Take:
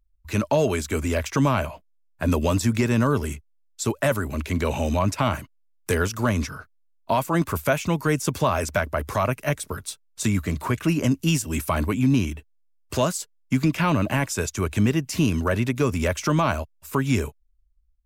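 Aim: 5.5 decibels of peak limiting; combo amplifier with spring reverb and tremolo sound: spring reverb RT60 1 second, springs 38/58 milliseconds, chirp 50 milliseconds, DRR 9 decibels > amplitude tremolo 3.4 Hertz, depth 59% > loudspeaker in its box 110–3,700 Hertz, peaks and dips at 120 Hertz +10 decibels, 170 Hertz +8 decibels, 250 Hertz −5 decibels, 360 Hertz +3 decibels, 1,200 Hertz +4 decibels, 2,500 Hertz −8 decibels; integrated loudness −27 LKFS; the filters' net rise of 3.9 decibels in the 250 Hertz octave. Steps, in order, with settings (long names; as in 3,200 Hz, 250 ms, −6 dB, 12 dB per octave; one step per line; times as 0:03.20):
parametric band 250 Hz +3.5 dB
brickwall limiter −14 dBFS
spring reverb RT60 1 s, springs 38/58 ms, chirp 50 ms, DRR 9 dB
amplitude tremolo 3.4 Hz, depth 59%
loudspeaker in its box 110–3,700 Hz, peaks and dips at 120 Hz +10 dB, 170 Hz +8 dB, 250 Hz −5 dB, 360 Hz +3 dB, 1,200 Hz +4 dB, 2,500 Hz −8 dB
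level −1.5 dB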